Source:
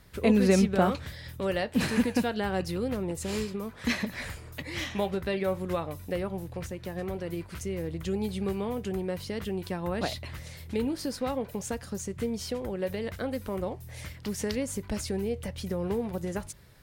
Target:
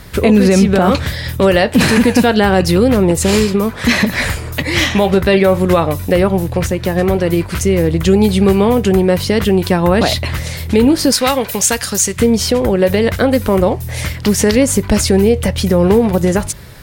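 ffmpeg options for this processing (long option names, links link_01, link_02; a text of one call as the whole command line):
ffmpeg -i in.wav -filter_complex "[0:a]asettb=1/sr,asplit=3[link_01][link_02][link_03];[link_01]atrim=end=11.124[link_04];[link_02]atrim=start=11.12:end=12.2,asetpts=PTS-STARTPTS,afade=type=in:duration=0.004:curve=qsin,afade=type=out:start_time=1.076:duration=0.004:curve=qsin,tiltshelf=frequency=1100:gain=-8[link_05];[link_03]atrim=start=12.196[link_06];[link_04][link_05]acrossfade=duration=0.004:curve1=hsin:curve2=qsin[link_07];[link_07][link_06]acrossfade=duration=0.004:curve1=qsin:curve2=hsin,alimiter=level_in=21.5dB:limit=-1dB:release=50:level=0:latency=1,volume=-1dB" out.wav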